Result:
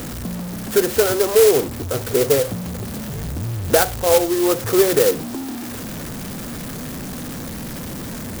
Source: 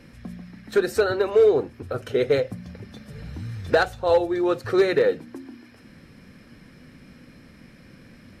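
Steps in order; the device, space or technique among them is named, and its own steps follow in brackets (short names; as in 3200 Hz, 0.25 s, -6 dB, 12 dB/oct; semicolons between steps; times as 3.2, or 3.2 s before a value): early CD player with a faulty converter (zero-crossing step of -28 dBFS; clock jitter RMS 0.11 ms); gain +3 dB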